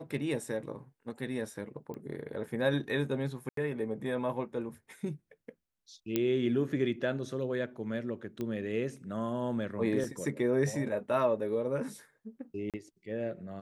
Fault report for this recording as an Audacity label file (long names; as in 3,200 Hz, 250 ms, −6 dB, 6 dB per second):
1.940000	1.940000	click −30 dBFS
3.490000	3.570000	drop-out 83 ms
6.160000	6.160000	click −15 dBFS
8.410000	8.410000	click −24 dBFS
10.040000	10.040000	drop-out 3 ms
12.700000	12.740000	drop-out 37 ms